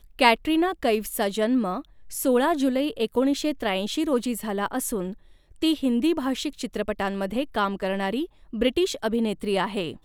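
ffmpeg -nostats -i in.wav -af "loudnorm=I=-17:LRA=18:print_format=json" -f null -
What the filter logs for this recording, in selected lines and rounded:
"input_i" : "-25.4",
"input_tp" : "-3.0",
"input_lra" : "3.1",
"input_thresh" : "-35.6",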